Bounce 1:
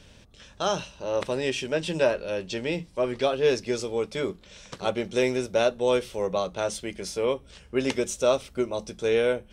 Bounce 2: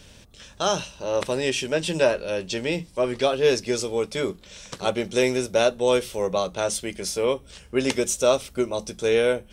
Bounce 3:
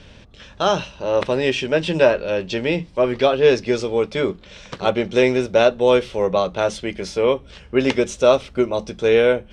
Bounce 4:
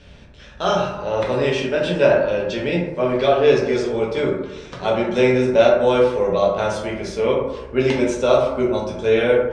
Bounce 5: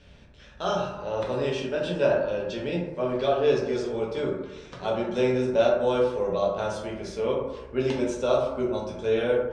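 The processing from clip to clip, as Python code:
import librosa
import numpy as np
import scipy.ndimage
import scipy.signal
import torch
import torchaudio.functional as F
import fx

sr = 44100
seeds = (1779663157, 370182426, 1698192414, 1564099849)

y1 = fx.high_shelf(x, sr, hz=6900.0, db=10.0)
y1 = y1 * librosa.db_to_amplitude(2.5)
y2 = scipy.signal.sosfilt(scipy.signal.butter(2, 3400.0, 'lowpass', fs=sr, output='sos'), y1)
y2 = y2 * librosa.db_to_amplitude(5.5)
y3 = fx.rev_plate(y2, sr, seeds[0], rt60_s=0.98, hf_ratio=0.35, predelay_ms=0, drr_db=-3.5)
y3 = y3 * librosa.db_to_amplitude(-5.0)
y4 = fx.dynamic_eq(y3, sr, hz=2100.0, q=3.2, threshold_db=-43.0, ratio=4.0, max_db=-7)
y4 = y4 * librosa.db_to_amplitude(-7.5)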